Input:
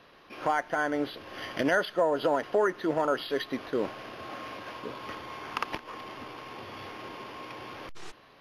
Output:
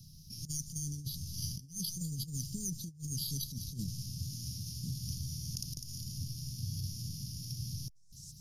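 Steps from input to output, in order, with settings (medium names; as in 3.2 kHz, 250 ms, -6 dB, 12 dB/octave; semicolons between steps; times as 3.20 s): Chebyshev band-stop 160–5500 Hz, order 4; feedback echo behind a high-pass 202 ms, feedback 52%, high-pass 4.3 kHz, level -11 dB; compressor with a negative ratio -52 dBFS, ratio -0.5; trim +14 dB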